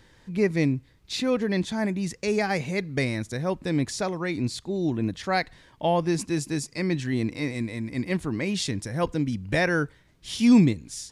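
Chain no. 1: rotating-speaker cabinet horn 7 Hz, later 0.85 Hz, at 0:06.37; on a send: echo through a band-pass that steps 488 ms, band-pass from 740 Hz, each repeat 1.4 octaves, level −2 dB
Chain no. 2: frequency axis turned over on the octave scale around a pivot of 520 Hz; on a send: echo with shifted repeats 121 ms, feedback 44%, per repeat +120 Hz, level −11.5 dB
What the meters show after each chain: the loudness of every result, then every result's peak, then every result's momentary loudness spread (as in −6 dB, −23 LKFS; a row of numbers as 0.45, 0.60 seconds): −27.5, −28.0 LKFS; −9.0, −10.5 dBFS; 7, 8 LU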